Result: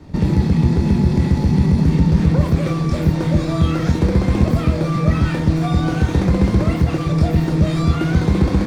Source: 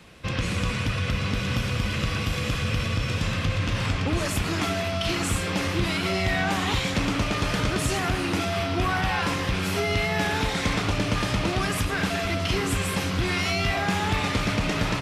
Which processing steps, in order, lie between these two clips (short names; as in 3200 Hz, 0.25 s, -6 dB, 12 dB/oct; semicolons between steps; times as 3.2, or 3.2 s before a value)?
flutter echo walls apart 7.6 m, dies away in 0.28 s; in parallel at -5 dB: decimation with a swept rate 16×, swing 60% 1.7 Hz; on the sum: RIAA curve playback; notch 1700 Hz, Q 17; on a send: reverse echo 0.222 s -23 dB; on the sum: speed mistake 45 rpm record played at 78 rpm; gain -5.5 dB